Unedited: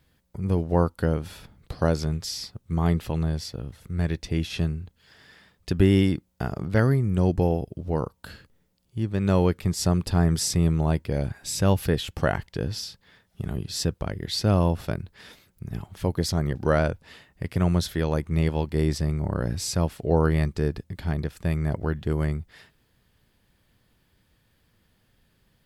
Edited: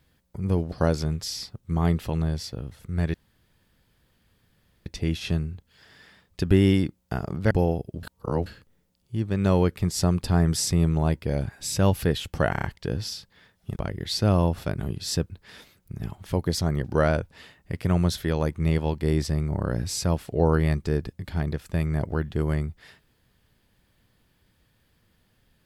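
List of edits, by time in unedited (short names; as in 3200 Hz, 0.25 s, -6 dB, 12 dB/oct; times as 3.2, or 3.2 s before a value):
0.72–1.73 cut
4.15 insert room tone 1.72 s
6.8–7.34 cut
7.86–8.29 reverse
12.34 stutter 0.03 s, 5 plays
13.47–13.98 move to 15.01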